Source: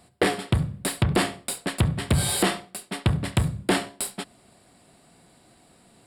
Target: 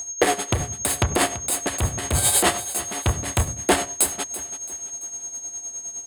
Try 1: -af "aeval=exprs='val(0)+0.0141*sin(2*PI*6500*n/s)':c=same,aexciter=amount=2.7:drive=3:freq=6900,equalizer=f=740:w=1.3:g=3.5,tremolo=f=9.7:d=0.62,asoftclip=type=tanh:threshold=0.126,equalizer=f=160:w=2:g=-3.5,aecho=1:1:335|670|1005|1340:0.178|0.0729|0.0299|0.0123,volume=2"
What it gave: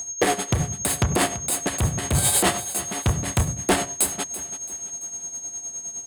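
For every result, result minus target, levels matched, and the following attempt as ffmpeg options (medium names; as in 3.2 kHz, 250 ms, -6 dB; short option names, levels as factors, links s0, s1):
saturation: distortion +9 dB; 125 Hz band +2.5 dB
-af "aeval=exprs='val(0)+0.0141*sin(2*PI*6500*n/s)':c=same,aexciter=amount=2.7:drive=3:freq=6900,equalizer=f=740:w=1.3:g=3.5,tremolo=f=9.7:d=0.62,asoftclip=type=tanh:threshold=0.282,equalizer=f=160:w=2:g=-3.5,aecho=1:1:335|670|1005|1340:0.178|0.0729|0.0299|0.0123,volume=2"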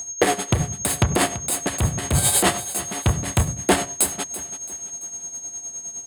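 125 Hz band +3.0 dB
-af "aeval=exprs='val(0)+0.0141*sin(2*PI*6500*n/s)':c=same,aexciter=amount=2.7:drive=3:freq=6900,equalizer=f=740:w=1.3:g=3.5,tremolo=f=9.7:d=0.62,asoftclip=type=tanh:threshold=0.282,equalizer=f=160:w=2:g=-13.5,aecho=1:1:335|670|1005|1340:0.178|0.0729|0.0299|0.0123,volume=2"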